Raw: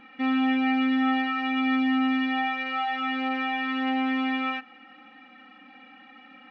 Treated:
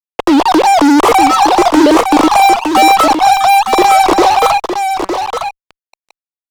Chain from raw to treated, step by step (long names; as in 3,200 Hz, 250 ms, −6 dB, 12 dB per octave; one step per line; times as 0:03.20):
three sine waves on the formant tracks
hum removal 191 Hz, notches 6
in parallel at +2 dB: downward compressor 8 to 1, threshold −38 dBFS, peak gain reduction 24.5 dB
on the sum: Butterworth low-pass 1,200 Hz 96 dB per octave
automatic gain control gain up to 3.5 dB
fuzz pedal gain 33 dB, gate −36 dBFS
on a send: single-tap delay 911 ms −7 dB
on the sum: level +7.5 dB